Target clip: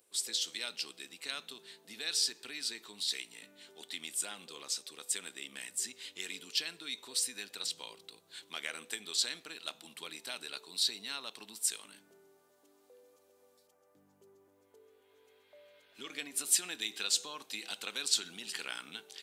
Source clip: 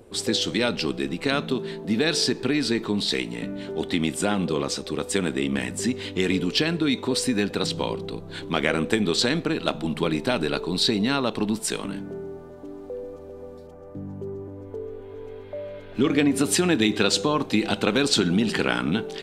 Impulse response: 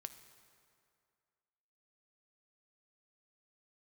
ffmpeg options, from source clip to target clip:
-af "aderivative,volume=-3.5dB"

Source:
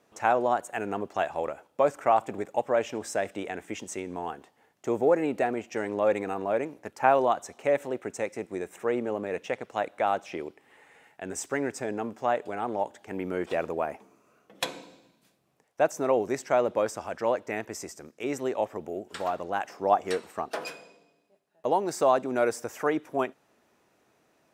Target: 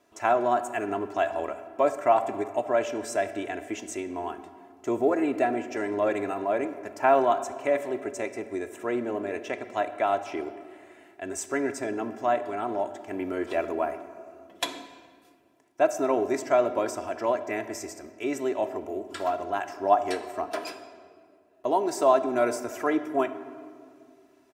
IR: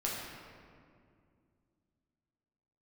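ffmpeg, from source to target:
-filter_complex "[0:a]aecho=1:1:3:0.69,asplit=2[a][b];[1:a]atrim=start_sample=2205,asetrate=48510,aresample=44100[c];[b][c]afir=irnorm=-1:irlink=0,volume=-11.5dB[d];[a][d]amix=inputs=2:normalize=0,volume=-2.5dB"

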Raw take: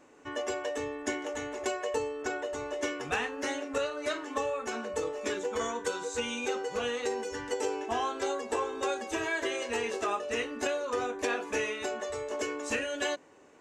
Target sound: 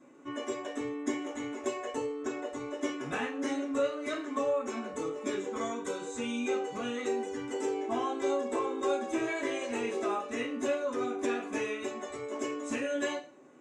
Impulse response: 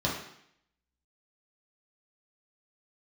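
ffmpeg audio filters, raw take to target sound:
-filter_complex "[0:a]asettb=1/sr,asplit=3[a][b][c];[a]atrim=end=9.264[d];[b]atrim=start=9.26:end=9.72,asetpts=PTS-STARTPTS,afade=t=in:d=0.004:c=qsin,afade=t=out:st=0.456:d=0.004:c=qsin,asplit=2[e][f];[f]adelay=14,volume=-3.5dB[g];[e][g]amix=inputs=2:normalize=0,atrim=end_sample=20286[h];[c]atrim=start=9.716[i];[d][h]acrossfade=d=0.004:c1=hsin:c2=qsin[j];[j][i]acrossfade=d=0.004:c1=qsin:c2=hsin[k];[1:a]atrim=start_sample=2205,asetrate=88200,aresample=44100[l];[k][l]afir=irnorm=-1:irlink=0,volume=-8dB"

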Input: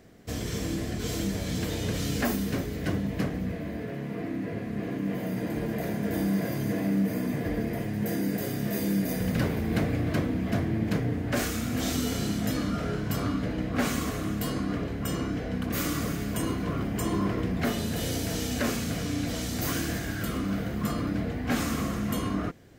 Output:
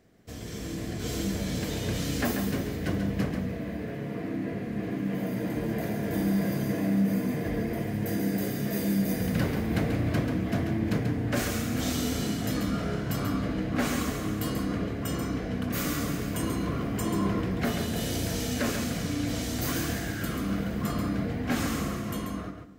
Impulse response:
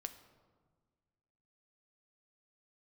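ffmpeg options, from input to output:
-filter_complex "[0:a]dynaudnorm=f=120:g=13:m=7dB,asplit=2[a][b];[1:a]atrim=start_sample=2205,adelay=137[c];[b][c]afir=irnorm=-1:irlink=0,volume=-3dB[d];[a][d]amix=inputs=2:normalize=0,volume=-8dB"

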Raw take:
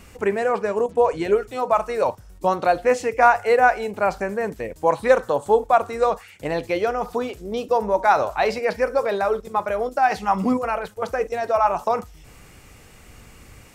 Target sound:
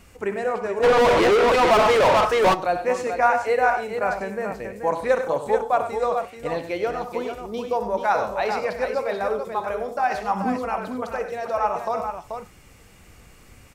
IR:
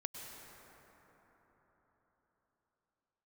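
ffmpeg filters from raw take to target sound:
-filter_complex "[0:a]aecho=1:1:62|97|139|434:0.224|0.299|0.126|0.447,asplit=3[a][b][c];[a]afade=t=out:st=0.82:d=0.02[d];[b]asplit=2[e][f];[f]highpass=f=720:p=1,volume=36dB,asoftclip=type=tanh:threshold=-5.5dB[g];[e][g]amix=inputs=2:normalize=0,lowpass=f=2.6k:p=1,volume=-6dB,afade=t=in:st=0.82:d=0.02,afade=t=out:st=2.53:d=0.02[h];[c]afade=t=in:st=2.53:d=0.02[i];[d][h][i]amix=inputs=3:normalize=0,flanger=delay=1.3:depth=5:regen=90:speed=0.57:shape=triangular"

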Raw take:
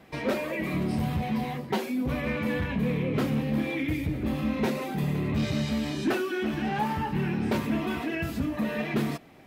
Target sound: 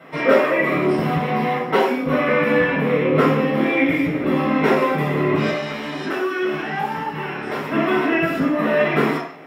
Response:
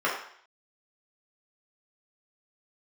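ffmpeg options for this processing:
-filter_complex "[0:a]asettb=1/sr,asplit=3[a][b][c];[a]atrim=end=5.494[d];[b]atrim=start=5.49:end=7.72,asetpts=PTS-STARTPTS,afade=t=in:d=0.004:c=qsin,afade=t=out:st=2.226:d=0.004:c=qsin,acrossover=split=120|470|3700[e][f][g][h];[e]acompressor=threshold=-44dB:ratio=4[i];[f]acompressor=threshold=-41dB:ratio=4[j];[g]acompressor=threshold=-40dB:ratio=4[k];[h]acompressor=threshold=-48dB:ratio=4[l];[i][j][k][l]amix=inputs=4:normalize=0[m];[c]atrim=start=7.716[n];[d][m]acrossfade=d=0.004:c1=hsin:c2=qsin[o];[o][n]acrossfade=d=0.004:c1=qsin:c2=hsin[p];[1:a]atrim=start_sample=2205,afade=t=out:st=0.27:d=0.01,atrim=end_sample=12348[q];[p][q]afir=irnorm=-1:irlink=0,volume=1dB"

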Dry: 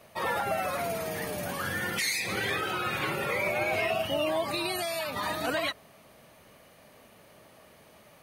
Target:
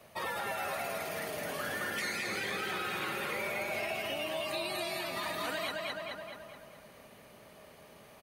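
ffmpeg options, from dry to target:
-filter_complex "[0:a]asplit=2[a][b];[b]adelay=213,lowpass=f=4.4k:p=1,volume=-3.5dB,asplit=2[c][d];[d]adelay=213,lowpass=f=4.4k:p=1,volume=0.54,asplit=2[e][f];[f]adelay=213,lowpass=f=4.4k:p=1,volume=0.54,asplit=2[g][h];[h]adelay=213,lowpass=f=4.4k:p=1,volume=0.54,asplit=2[i][j];[j]adelay=213,lowpass=f=4.4k:p=1,volume=0.54,asplit=2[k][l];[l]adelay=213,lowpass=f=4.4k:p=1,volume=0.54,asplit=2[m][n];[n]adelay=213,lowpass=f=4.4k:p=1,volume=0.54[o];[c][e][g][i][k][m][o]amix=inputs=7:normalize=0[p];[a][p]amix=inputs=2:normalize=0,acrossover=split=180|1600|4100[q][r][s][t];[q]acompressor=threshold=-55dB:ratio=4[u];[r]acompressor=threshold=-36dB:ratio=4[v];[s]acompressor=threshold=-38dB:ratio=4[w];[t]acompressor=threshold=-44dB:ratio=4[x];[u][v][w][x]amix=inputs=4:normalize=0,asplit=2[y][z];[z]aecho=0:1:218:0.335[aa];[y][aa]amix=inputs=2:normalize=0,volume=-2dB"

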